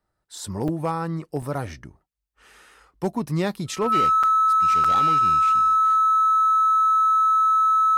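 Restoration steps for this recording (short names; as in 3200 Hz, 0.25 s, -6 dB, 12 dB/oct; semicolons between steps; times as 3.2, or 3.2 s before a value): clip repair -15.5 dBFS; notch 1300 Hz, Q 30; interpolate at 0.68/1.42/4.23/4.84, 5.2 ms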